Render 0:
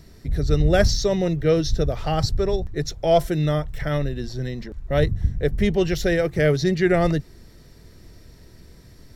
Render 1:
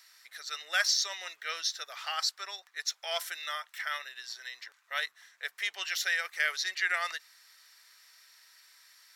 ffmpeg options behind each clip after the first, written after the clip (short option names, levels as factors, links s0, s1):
-af "highpass=f=1200:w=0.5412,highpass=f=1200:w=1.3066"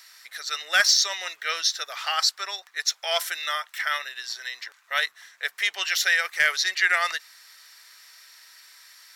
-af "asoftclip=type=hard:threshold=0.119,volume=2.66"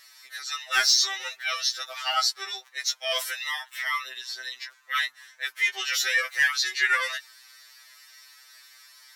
-af "afftfilt=real='re*2.45*eq(mod(b,6),0)':imag='im*2.45*eq(mod(b,6),0)':win_size=2048:overlap=0.75,volume=1.12"